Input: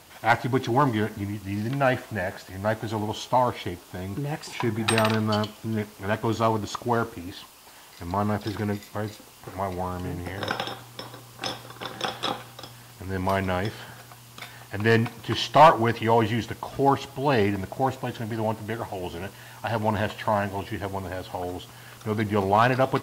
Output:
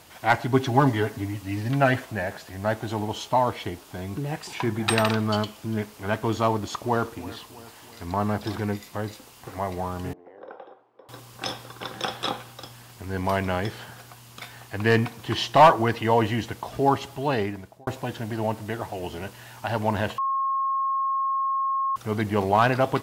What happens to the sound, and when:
0.53–2.05 s: comb 7.3 ms
6.51–8.65 s: filtered feedback delay 328 ms, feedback 59%, level -17 dB
10.13–11.09 s: ladder band-pass 560 Hz, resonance 35%
17.13–17.87 s: fade out
20.18–21.96 s: bleep 1.08 kHz -22 dBFS

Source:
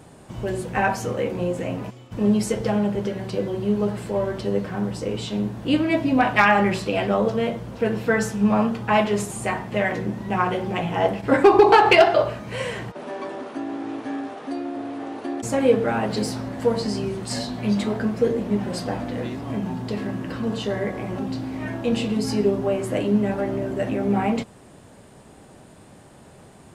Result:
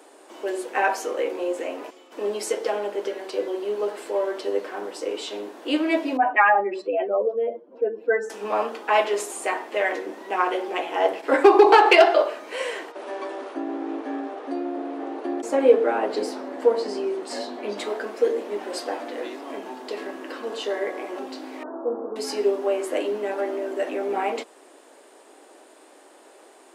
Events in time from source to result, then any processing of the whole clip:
6.17–8.30 s: spectral contrast enhancement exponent 2
13.54–17.78 s: tilt EQ -2.5 dB/octave
21.63–22.16 s: steep low-pass 1.4 kHz 72 dB/octave
whole clip: steep high-pass 300 Hz 48 dB/octave

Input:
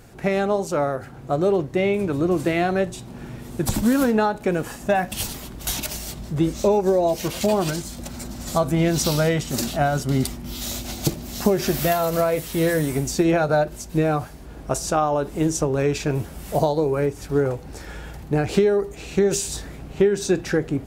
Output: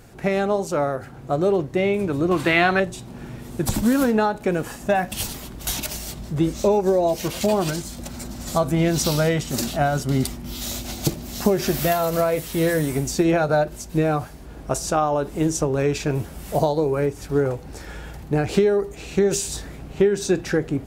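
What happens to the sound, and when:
2.31–2.80 s: high-order bell 1.9 kHz +9.5 dB 2.6 oct

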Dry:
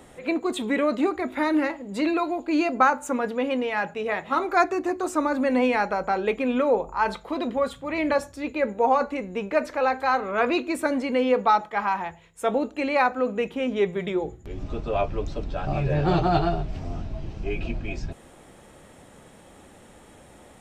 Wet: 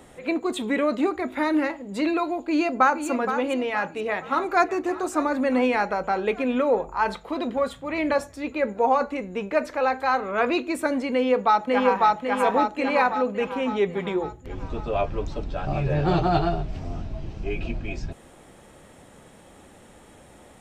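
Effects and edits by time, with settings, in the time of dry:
2.38–3.06 s: echo throw 470 ms, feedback 40%, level -9 dB
3.63–4.67 s: echo throw 600 ms, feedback 70%, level -17 dB
11.12–12.08 s: echo throw 550 ms, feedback 55%, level -0.5 dB

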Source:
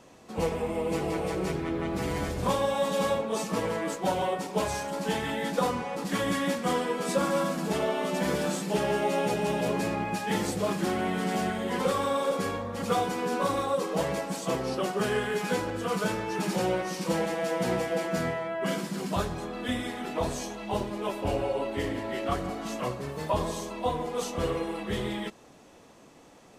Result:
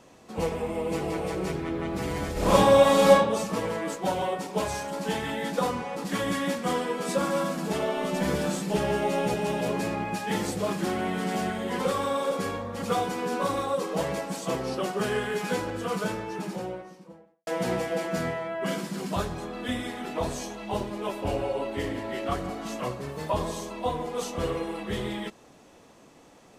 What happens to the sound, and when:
2.32–3.13 s: reverb throw, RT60 0.86 s, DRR -8.5 dB
7.96–9.35 s: bass shelf 93 Hz +12 dB
15.76–17.47 s: studio fade out

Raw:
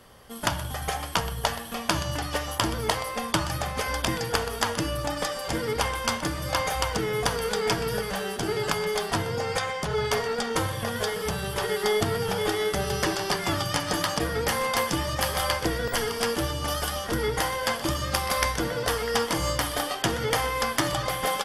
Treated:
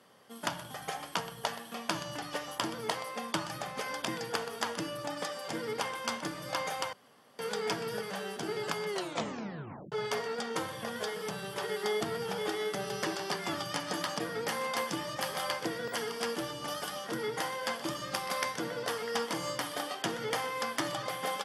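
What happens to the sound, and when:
6.93–7.39 s: room tone
8.88 s: tape stop 1.04 s
whole clip: high-pass 150 Hz 24 dB/octave; treble shelf 12 kHz -8.5 dB; trim -7.5 dB

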